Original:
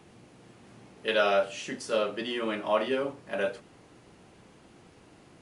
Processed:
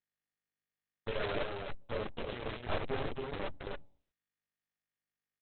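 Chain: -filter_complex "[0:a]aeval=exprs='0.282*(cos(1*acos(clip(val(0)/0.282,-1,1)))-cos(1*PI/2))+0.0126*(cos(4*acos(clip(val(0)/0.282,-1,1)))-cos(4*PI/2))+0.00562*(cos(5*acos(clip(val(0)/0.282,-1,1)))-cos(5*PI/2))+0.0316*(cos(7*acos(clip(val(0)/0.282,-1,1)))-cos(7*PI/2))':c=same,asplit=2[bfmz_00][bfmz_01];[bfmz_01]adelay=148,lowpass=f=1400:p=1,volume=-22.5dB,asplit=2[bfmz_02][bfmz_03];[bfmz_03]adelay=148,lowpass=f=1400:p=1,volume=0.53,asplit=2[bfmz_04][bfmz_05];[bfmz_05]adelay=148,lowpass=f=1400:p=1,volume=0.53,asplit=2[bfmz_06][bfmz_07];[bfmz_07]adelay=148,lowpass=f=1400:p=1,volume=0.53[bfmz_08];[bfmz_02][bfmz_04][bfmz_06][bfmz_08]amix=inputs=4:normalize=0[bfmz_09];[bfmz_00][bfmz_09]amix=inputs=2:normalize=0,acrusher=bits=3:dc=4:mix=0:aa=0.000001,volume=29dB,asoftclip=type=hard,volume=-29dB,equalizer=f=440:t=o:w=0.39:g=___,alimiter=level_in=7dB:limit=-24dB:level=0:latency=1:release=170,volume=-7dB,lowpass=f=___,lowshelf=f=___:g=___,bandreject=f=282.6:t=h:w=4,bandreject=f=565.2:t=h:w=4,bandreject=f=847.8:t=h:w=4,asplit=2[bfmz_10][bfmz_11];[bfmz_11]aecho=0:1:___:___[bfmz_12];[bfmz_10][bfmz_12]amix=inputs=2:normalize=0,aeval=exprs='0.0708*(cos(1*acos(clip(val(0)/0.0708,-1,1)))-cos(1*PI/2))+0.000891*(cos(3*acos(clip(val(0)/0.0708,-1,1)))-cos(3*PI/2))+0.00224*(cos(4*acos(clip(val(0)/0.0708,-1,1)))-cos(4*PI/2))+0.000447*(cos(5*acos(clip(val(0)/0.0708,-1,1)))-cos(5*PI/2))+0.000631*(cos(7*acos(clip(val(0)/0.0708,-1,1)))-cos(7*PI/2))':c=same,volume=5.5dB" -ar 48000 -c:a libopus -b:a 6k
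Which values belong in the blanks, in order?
10.5, 5100, 110, 11, 274, 0.668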